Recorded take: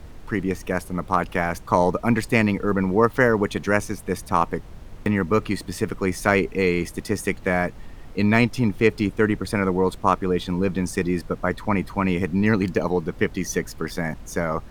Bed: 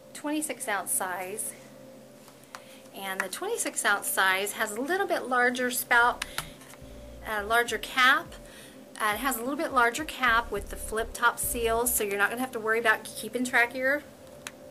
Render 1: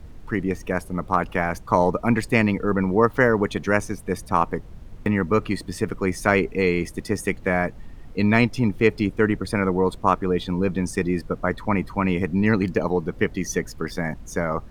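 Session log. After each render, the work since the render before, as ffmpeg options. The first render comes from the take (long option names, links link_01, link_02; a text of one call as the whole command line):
ffmpeg -i in.wav -af "afftdn=noise_reduction=6:noise_floor=-41" out.wav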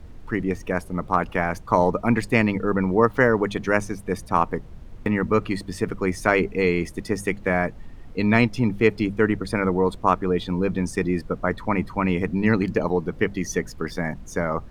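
ffmpeg -i in.wav -af "highshelf=frequency=7500:gain=-4.5,bandreject=frequency=50:width_type=h:width=6,bandreject=frequency=100:width_type=h:width=6,bandreject=frequency=150:width_type=h:width=6,bandreject=frequency=200:width_type=h:width=6" out.wav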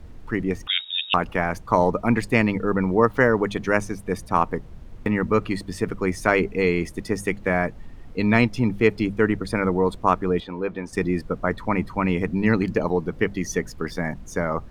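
ffmpeg -i in.wav -filter_complex "[0:a]asettb=1/sr,asplit=3[link_01][link_02][link_03];[link_01]atrim=end=0.674[link_04];[link_02]atrim=start=0.67:end=1.14,asetpts=PTS-STARTPTS,afade=type=in:duration=0.004:curve=qsin,afade=type=out:start_time=0.466:duration=0.004:curve=qsin,lowpass=frequency=3200:width_type=q:width=0.5098,lowpass=frequency=3200:width_type=q:width=0.6013,lowpass=frequency=3200:width_type=q:width=0.9,lowpass=frequency=3200:width_type=q:width=2.563,afreqshift=-3800[link_05];[link_03]atrim=start=1.136[link_06];[link_04][link_05]acrossfade=duration=0.004:curve1=hsin:curve2=qsin[link_07];[link_07][link_06]acrossfade=duration=0.004:curve1=qsin:curve2=hsin,asettb=1/sr,asplit=3[link_08][link_09][link_10];[link_08]atrim=end=10.404[link_11];[link_09]atrim=start=10.4:end=10.93,asetpts=PTS-STARTPTS,afade=type=in:duration=0.004:curve=qsin,afade=type=out:start_time=0.526:duration=0.004:curve=qsin,bass=frequency=250:gain=-14,treble=frequency=4000:gain=-13[link_12];[link_10]atrim=start=10.926[link_13];[link_11][link_12]acrossfade=duration=0.004:curve1=hsin:curve2=qsin[link_14];[link_14][link_13]acrossfade=duration=0.004:curve1=qsin:curve2=hsin" out.wav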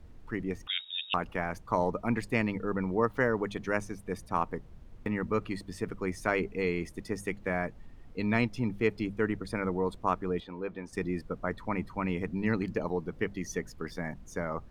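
ffmpeg -i in.wav -af "volume=-9.5dB" out.wav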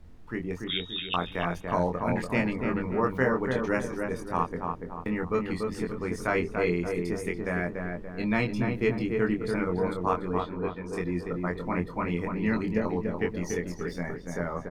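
ffmpeg -i in.wav -filter_complex "[0:a]asplit=2[link_01][link_02];[link_02]adelay=23,volume=-4dB[link_03];[link_01][link_03]amix=inputs=2:normalize=0,asplit=2[link_04][link_05];[link_05]adelay=288,lowpass=frequency=1600:poles=1,volume=-3.5dB,asplit=2[link_06][link_07];[link_07]adelay=288,lowpass=frequency=1600:poles=1,volume=0.49,asplit=2[link_08][link_09];[link_09]adelay=288,lowpass=frequency=1600:poles=1,volume=0.49,asplit=2[link_10][link_11];[link_11]adelay=288,lowpass=frequency=1600:poles=1,volume=0.49,asplit=2[link_12][link_13];[link_13]adelay=288,lowpass=frequency=1600:poles=1,volume=0.49,asplit=2[link_14][link_15];[link_15]adelay=288,lowpass=frequency=1600:poles=1,volume=0.49[link_16];[link_04][link_06][link_08][link_10][link_12][link_14][link_16]amix=inputs=7:normalize=0" out.wav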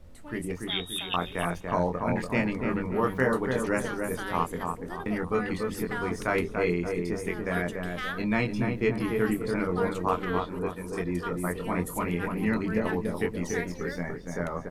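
ffmpeg -i in.wav -i bed.wav -filter_complex "[1:a]volume=-14dB[link_01];[0:a][link_01]amix=inputs=2:normalize=0" out.wav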